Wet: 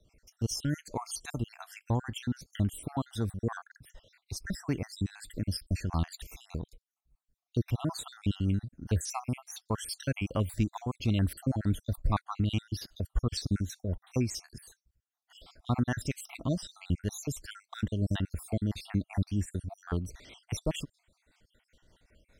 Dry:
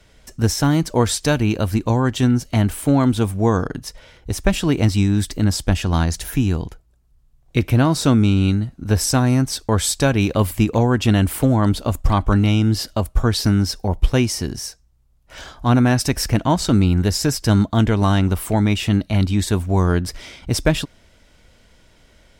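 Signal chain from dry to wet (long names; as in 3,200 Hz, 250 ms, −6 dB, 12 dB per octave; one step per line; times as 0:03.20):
time-frequency cells dropped at random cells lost 61%
rotating-speaker cabinet horn 5 Hz
dynamic equaliser 400 Hz, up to −4 dB, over −29 dBFS, Q 0.79
level −8.5 dB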